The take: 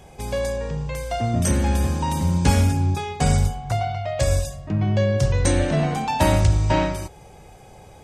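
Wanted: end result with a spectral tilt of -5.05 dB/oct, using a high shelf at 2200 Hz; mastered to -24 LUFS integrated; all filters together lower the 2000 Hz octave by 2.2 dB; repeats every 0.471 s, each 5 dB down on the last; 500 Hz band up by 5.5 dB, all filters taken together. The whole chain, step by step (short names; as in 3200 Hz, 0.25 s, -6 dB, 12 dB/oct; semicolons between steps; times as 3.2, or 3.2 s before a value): bell 500 Hz +6.5 dB; bell 2000 Hz -8 dB; high shelf 2200 Hz +8.5 dB; feedback echo 0.471 s, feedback 56%, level -5 dB; gain -5.5 dB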